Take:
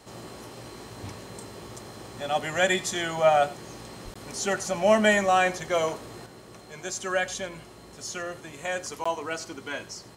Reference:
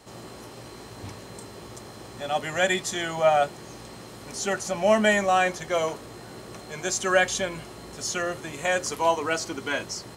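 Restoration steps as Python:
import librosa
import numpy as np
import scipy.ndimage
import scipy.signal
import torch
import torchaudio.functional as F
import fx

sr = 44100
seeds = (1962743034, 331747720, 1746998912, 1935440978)

y = fx.highpass(x, sr, hz=140.0, slope=24, at=(4.04, 4.16), fade=0.02)
y = fx.fix_interpolate(y, sr, at_s=(4.14, 9.04), length_ms=15.0)
y = fx.fix_echo_inverse(y, sr, delay_ms=94, level_db=-19.0)
y = fx.fix_level(y, sr, at_s=6.26, step_db=6.0)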